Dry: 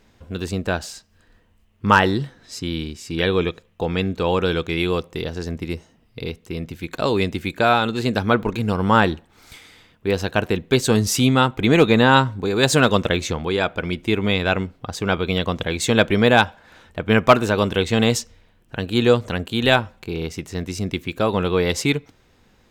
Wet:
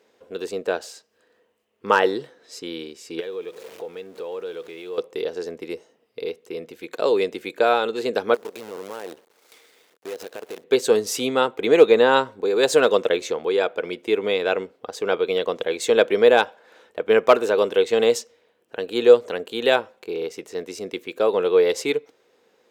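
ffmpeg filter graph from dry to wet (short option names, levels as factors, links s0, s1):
-filter_complex "[0:a]asettb=1/sr,asplit=3[s0][s1][s2];[s0]atrim=end=3.204[s3];[s1]atrim=start=3.2:end=4.98,asetpts=PTS-STARTPTS,afade=t=in:d=0.004:c=qsin,afade=t=out:st=1.776:d=0.004:c=qsin,aeval=exprs='val(0)+0.5*0.0266*sgn(val(0))':c=same,acompressor=threshold=0.0141:ratio=2.5:attack=3.2:release=140:knee=1:detection=peak[s4];[s2]atrim=start=4.976[s5];[s3][s4]acrossfade=d=0.004:c1=hsin:c2=qsin[s6];[s6][s5]acrossfade=d=0.004:c1=qsin:c2=hsin,asettb=1/sr,asplit=3[s7][s8][s9];[s7]atrim=end=8.344[s10];[s8]atrim=start=8.34:end=10.64,asetpts=PTS-STARTPTS,afade=t=in:d=0.004:c=qsin,afade=t=out:st=2.296:d=0.004:c=qsin,acompressor=threshold=0.0398:ratio=10:attack=3.2:release=140:knee=1:detection=peak,acrusher=bits=6:dc=4:mix=0:aa=0.000001[s11];[s9]atrim=start=10.636[s12];[s10][s11]acrossfade=d=0.004:c1=hsin:c2=qsin[s13];[s13][s12]acrossfade=d=0.004:c1=qsin:c2=hsin,highpass=360,equalizer=f=460:t=o:w=0.69:g=12,volume=0.562"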